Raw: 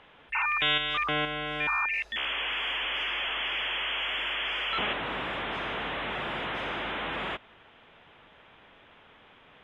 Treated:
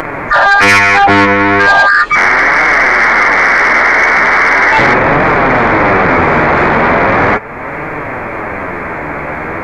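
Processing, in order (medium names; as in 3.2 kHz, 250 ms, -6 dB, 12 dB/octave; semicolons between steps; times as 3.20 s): frequency-domain pitch shifter -7 st; in parallel at +3 dB: upward compressor, threshold -34 dBFS; on the sum: flange 0.38 Hz, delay 6.3 ms, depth 7.8 ms, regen +39%; saturation -24 dBFS, distortion -13 dB; loudness maximiser +27.5 dB; trim -1 dB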